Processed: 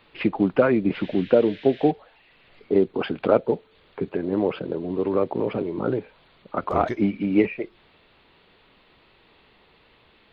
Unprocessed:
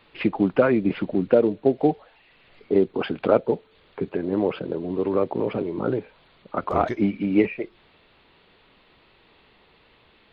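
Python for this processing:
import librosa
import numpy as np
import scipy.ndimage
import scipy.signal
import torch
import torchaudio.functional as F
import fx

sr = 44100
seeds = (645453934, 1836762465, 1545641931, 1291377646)

y = fx.dmg_noise_band(x, sr, seeds[0], low_hz=1600.0, high_hz=3700.0, level_db=-46.0, at=(0.93, 1.9), fade=0.02)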